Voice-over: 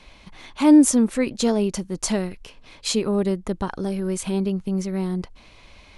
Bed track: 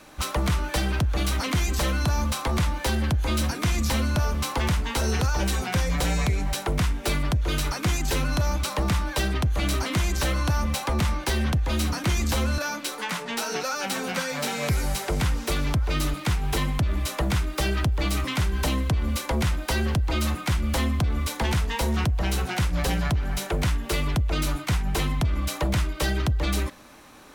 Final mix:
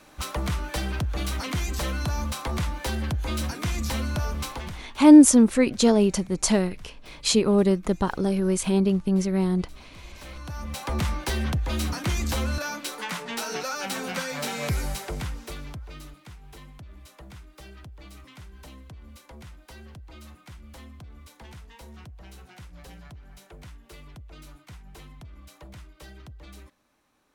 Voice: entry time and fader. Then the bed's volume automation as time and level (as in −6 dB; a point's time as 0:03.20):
4.40 s, +2.0 dB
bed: 0:04.44 −4 dB
0:05.03 −26 dB
0:09.92 −26 dB
0:10.95 −2.5 dB
0:14.78 −2.5 dB
0:16.29 −21 dB